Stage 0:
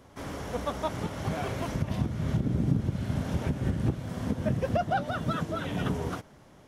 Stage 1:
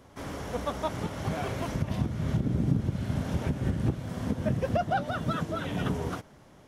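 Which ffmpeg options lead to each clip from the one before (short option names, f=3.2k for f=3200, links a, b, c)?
-af anull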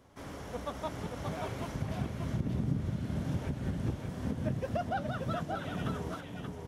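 -af "aecho=1:1:581:0.562,volume=-6.5dB"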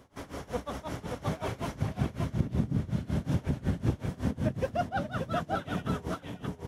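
-af "tremolo=f=5.4:d=0.89,volume=6.5dB"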